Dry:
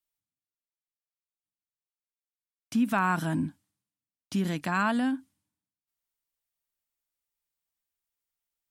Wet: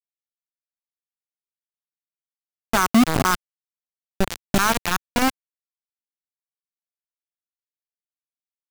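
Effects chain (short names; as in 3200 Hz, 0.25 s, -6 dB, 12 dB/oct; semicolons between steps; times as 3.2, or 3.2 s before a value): slices in reverse order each 0.191 s, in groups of 2; bit-crush 4-bit; low shelf 140 Hz +8 dB; gain +5.5 dB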